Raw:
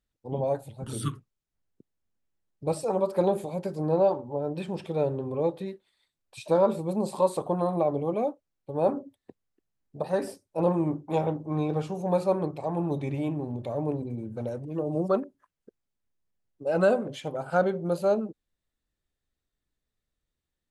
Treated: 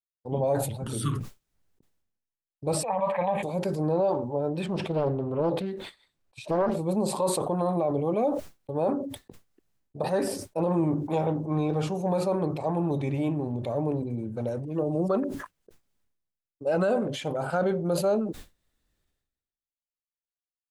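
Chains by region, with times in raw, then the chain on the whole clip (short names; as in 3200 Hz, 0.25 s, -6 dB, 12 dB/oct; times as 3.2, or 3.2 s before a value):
2.83–3.43 synth low-pass 1900 Hz, resonance Q 1.6 + tilt shelf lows -7 dB, about 700 Hz + fixed phaser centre 1400 Hz, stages 6
4.66–6.77 high shelf 4200 Hz -7.5 dB + Doppler distortion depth 0.52 ms
whole clip: expander -46 dBFS; limiter -19 dBFS; sustainer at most 54 dB/s; gain +2 dB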